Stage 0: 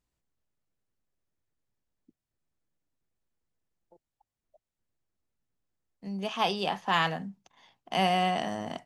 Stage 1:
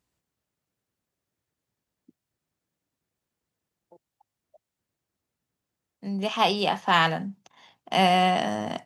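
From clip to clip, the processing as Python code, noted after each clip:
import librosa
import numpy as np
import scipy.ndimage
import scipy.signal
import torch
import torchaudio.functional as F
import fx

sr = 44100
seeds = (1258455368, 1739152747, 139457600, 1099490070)

y = scipy.signal.sosfilt(scipy.signal.butter(2, 81.0, 'highpass', fs=sr, output='sos'), x)
y = y * 10.0 ** (5.5 / 20.0)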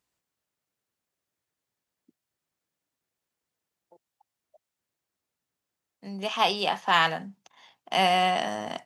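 y = fx.low_shelf(x, sr, hz=340.0, db=-10.0)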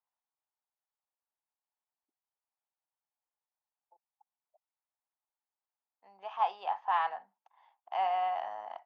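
y = fx.ladder_bandpass(x, sr, hz=950.0, resonance_pct=60)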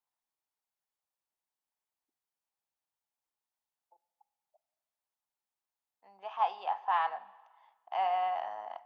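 y = fx.rev_plate(x, sr, seeds[0], rt60_s=1.4, hf_ratio=1.0, predelay_ms=0, drr_db=18.0)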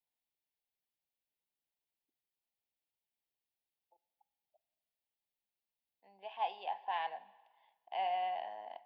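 y = fx.fixed_phaser(x, sr, hz=3000.0, stages=4)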